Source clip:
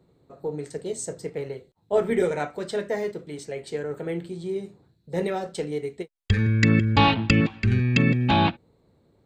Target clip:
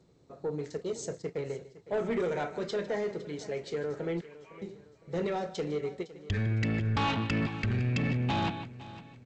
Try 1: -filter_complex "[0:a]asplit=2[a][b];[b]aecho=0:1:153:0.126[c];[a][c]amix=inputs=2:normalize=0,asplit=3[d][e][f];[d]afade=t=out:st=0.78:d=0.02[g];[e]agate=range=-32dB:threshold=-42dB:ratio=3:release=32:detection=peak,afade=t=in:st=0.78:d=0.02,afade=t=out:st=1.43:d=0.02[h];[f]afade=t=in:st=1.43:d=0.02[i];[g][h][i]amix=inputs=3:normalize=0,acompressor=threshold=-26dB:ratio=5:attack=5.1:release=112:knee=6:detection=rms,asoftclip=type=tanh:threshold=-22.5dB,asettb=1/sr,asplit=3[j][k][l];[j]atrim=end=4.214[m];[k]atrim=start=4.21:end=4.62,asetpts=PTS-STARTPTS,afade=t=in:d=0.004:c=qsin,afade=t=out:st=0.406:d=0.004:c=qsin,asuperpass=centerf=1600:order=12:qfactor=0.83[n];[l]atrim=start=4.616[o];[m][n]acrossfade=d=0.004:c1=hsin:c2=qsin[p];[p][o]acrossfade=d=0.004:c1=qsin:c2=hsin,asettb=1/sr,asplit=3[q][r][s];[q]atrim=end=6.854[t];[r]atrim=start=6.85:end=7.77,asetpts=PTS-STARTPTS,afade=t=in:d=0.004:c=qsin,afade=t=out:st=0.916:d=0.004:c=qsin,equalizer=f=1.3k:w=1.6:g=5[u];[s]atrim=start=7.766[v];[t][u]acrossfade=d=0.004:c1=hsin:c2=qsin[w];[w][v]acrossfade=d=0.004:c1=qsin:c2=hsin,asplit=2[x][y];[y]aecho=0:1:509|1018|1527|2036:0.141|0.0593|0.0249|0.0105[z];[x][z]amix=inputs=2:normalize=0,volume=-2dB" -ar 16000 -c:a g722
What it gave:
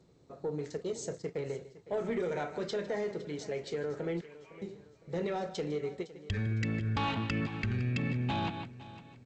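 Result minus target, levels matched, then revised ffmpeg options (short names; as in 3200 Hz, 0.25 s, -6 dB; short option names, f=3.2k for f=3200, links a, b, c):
compressor: peak gain reduction +5.5 dB
-filter_complex "[0:a]asplit=2[a][b];[b]aecho=0:1:153:0.126[c];[a][c]amix=inputs=2:normalize=0,asplit=3[d][e][f];[d]afade=t=out:st=0.78:d=0.02[g];[e]agate=range=-32dB:threshold=-42dB:ratio=3:release=32:detection=peak,afade=t=in:st=0.78:d=0.02,afade=t=out:st=1.43:d=0.02[h];[f]afade=t=in:st=1.43:d=0.02[i];[g][h][i]amix=inputs=3:normalize=0,acompressor=threshold=-19dB:ratio=5:attack=5.1:release=112:knee=6:detection=rms,asoftclip=type=tanh:threshold=-22.5dB,asettb=1/sr,asplit=3[j][k][l];[j]atrim=end=4.214[m];[k]atrim=start=4.21:end=4.62,asetpts=PTS-STARTPTS,afade=t=in:d=0.004:c=qsin,afade=t=out:st=0.406:d=0.004:c=qsin,asuperpass=centerf=1600:order=12:qfactor=0.83[n];[l]atrim=start=4.616[o];[m][n]acrossfade=d=0.004:c1=hsin:c2=qsin[p];[p][o]acrossfade=d=0.004:c1=qsin:c2=hsin,asettb=1/sr,asplit=3[q][r][s];[q]atrim=end=6.854[t];[r]atrim=start=6.85:end=7.77,asetpts=PTS-STARTPTS,afade=t=in:d=0.004:c=qsin,afade=t=out:st=0.916:d=0.004:c=qsin,equalizer=f=1.3k:w=1.6:g=5[u];[s]atrim=start=7.766[v];[t][u]acrossfade=d=0.004:c1=hsin:c2=qsin[w];[w][v]acrossfade=d=0.004:c1=qsin:c2=hsin,asplit=2[x][y];[y]aecho=0:1:509|1018|1527|2036:0.141|0.0593|0.0249|0.0105[z];[x][z]amix=inputs=2:normalize=0,volume=-2dB" -ar 16000 -c:a g722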